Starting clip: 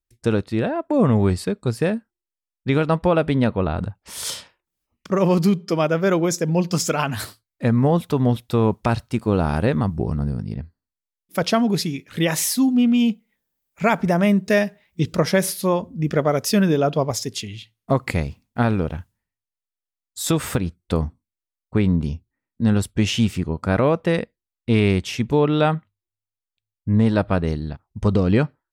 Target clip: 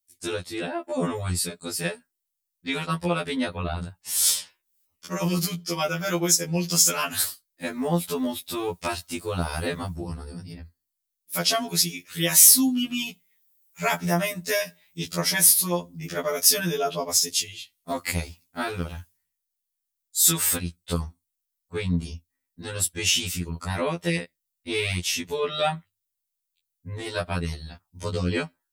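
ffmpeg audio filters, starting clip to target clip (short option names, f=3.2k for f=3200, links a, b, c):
-af "crystalizer=i=8:c=0,afftfilt=real='re*2*eq(mod(b,4),0)':imag='im*2*eq(mod(b,4),0)':win_size=2048:overlap=0.75,volume=-7.5dB"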